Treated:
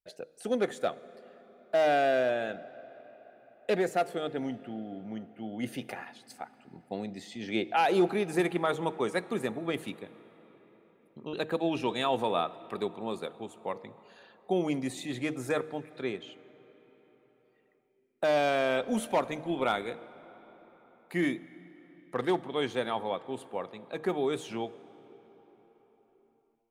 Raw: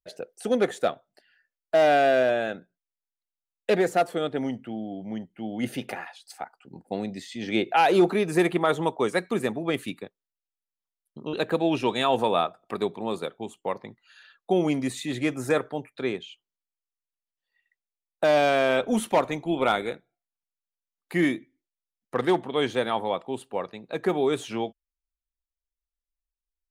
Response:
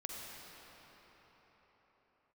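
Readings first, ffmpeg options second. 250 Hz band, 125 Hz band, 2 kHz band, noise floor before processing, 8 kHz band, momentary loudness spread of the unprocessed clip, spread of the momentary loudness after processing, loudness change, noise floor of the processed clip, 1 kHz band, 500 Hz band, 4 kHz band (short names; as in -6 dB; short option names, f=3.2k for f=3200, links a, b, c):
-5.5 dB, -6.0 dB, -5.5 dB, under -85 dBFS, -5.5 dB, 15 LU, 16 LU, -5.5 dB, -68 dBFS, -5.5 dB, -5.5 dB, -5.5 dB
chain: -filter_complex "[0:a]bandreject=f=156.7:t=h:w=4,bandreject=f=313.4:t=h:w=4,bandreject=f=470.1:t=h:w=4,asplit=2[a][b];[1:a]atrim=start_sample=2205[c];[b][c]afir=irnorm=-1:irlink=0,volume=-14.5dB[d];[a][d]amix=inputs=2:normalize=0,volume=-6.5dB"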